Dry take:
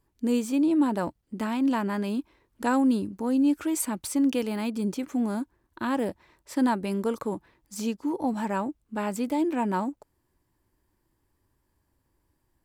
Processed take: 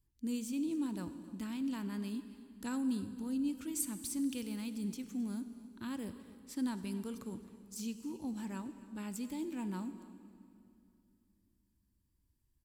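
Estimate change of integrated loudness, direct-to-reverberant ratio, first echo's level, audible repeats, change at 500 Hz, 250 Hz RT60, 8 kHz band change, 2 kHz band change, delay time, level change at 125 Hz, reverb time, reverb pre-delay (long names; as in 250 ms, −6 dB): −12.0 dB, 10.5 dB, −19.0 dB, 1, −18.0 dB, 3.3 s, −6.5 dB, −15.0 dB, 266 ms, −9.0 dB, 2.7 s, 34 ms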